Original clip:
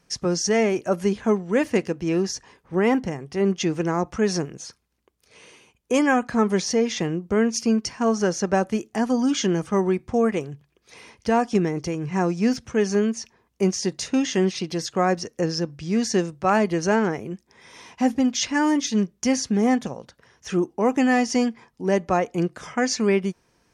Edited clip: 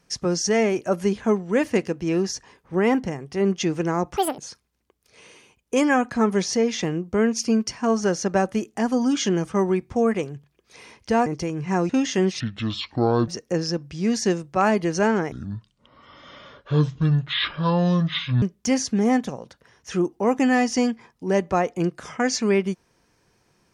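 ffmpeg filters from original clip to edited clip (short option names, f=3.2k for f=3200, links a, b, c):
-filter_complex "[0:a]asplit=9[a][b][c][d][e][f][g][h][i];[a]atrim=end=4.174[j];[b]atrim=start=4.17:end=4.56,asetpts=PTS-STARTPTS,asetrate=80703,aresample=44100,atrim=end_sample=9398,asetpts=PTS-STARTPTS[k];[c]atrim=start=4.556:end=11.442[l];[d]atrim=start=11.708:end=12.342[m];[e]atrim=start=14.088:end=14.604[n];[f]atrim=start=14.6:end=15.16,asetpts=PTS-STARTPTS,asetrate=28224,aresample=44100[o];[g]atrim=start=15.156:end=17.204[p];[h]atrim=start=17.2:end=19,asetpts=PTS-STARTPTS,asetrate=25578,aresample=44100,atrim=end_sample=136862,asetpts=PTS-STARTPTS[q];[i]atrim=start=18.996[r];[j][k]acrossfade=d=0.004:c1=hsin:c2=hsin[s];[s][l]acrossfade=d=0.004:c1=hsin:c2=hsin[t];[t][m]acrossfade=d=0.004:c1=hsin:c2=hsin[u];[u][n]acrossfade=d=0.004:c1=hsin:c2=hsin[v];[v][o]acrossfade=d=0.004:c1=hsin:c2=hsin[w];[w][p]acrossfade=d=0.004:c1=hsin:c2=hsin[x];[x][q]acrossfade=d=0.004:c1=hsin:c2=hsin[y];[y][r]acrossfade=d=0.004:c1=hsin:c2=hsin"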